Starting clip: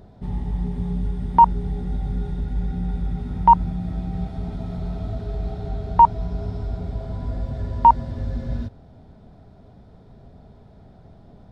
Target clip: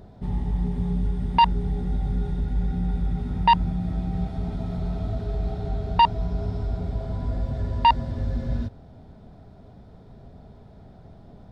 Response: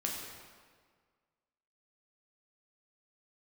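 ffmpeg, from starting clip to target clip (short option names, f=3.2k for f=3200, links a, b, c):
-af "aeval=exprs='0.75*(cos(1*acos(clip(val(0)/0.75,-1,1)))-cos(1*PI/2))+0.133*(cos(5*acos(clip(val(0)/0.75,-1,1)))-cos(5*PI/2))':c=same,volume=-5dB"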